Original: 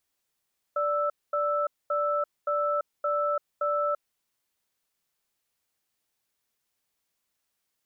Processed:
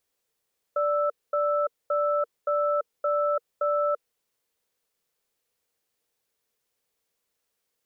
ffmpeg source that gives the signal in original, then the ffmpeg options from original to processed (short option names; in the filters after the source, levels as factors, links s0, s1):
-f lavfi -i "aevalsrc='0.0473*(sin(2*PI*586*t)+sin(2*PI*1320*t))*clip(min(mod(t,0.57),0.34-mod(t,0.57))/0.005,0,1)':d=3.22:s=44100"
-af "equalizer=f=470:t=o:w=0.43:g=10.5"